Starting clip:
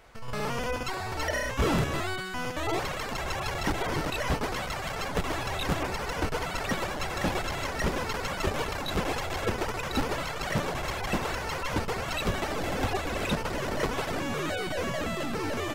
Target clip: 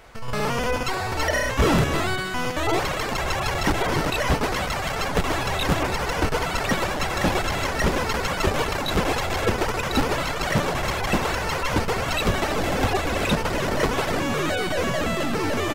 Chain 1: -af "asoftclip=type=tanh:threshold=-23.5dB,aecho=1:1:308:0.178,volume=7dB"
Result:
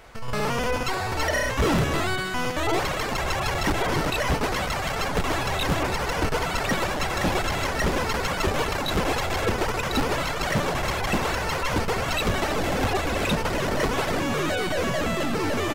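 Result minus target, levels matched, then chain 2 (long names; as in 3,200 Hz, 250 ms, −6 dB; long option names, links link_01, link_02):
soft clipping: distortion +17 dB
-af "asoftclip=type=tanh:threshold=-13dB,aecho=1:1:308:0.178,volume=7dB"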